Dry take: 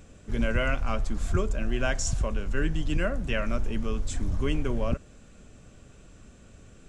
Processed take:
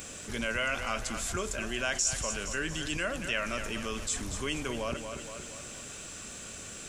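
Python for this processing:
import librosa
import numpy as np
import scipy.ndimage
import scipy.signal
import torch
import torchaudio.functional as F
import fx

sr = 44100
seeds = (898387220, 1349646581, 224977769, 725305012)

p1 = fx.tilt_eq(x, sr, slope=3.5)
p2 = p1 + fx.echo_feedback(p1, sr, ms=233, feedback_pct=44, wet_db=-12.5, dry=0)
p3 = fx.env_flatten(p2, sr, amount_pct=50)
y = p3 * librosa.db_to_amplitude(-6.5)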